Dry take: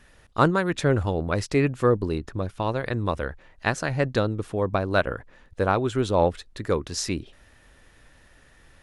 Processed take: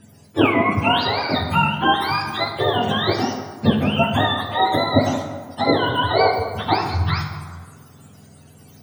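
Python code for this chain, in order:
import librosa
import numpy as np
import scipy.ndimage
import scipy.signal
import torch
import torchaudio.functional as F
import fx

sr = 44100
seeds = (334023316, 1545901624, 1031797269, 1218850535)

p1 = fx.octave_mirror(x, sr, pivot_hz=620.0)
p2 = fx.rider(p1, sr, range_db=4, speed_s=0.5)
p3 = p1 + (p2 * librosa.db_to_amplitude(0.5))
y = fx.rev_plate(p3, sr, seeds[0], rt60_s=1.6, hf_ratio=0.55, predelay_ms=0, drr_db=2.5)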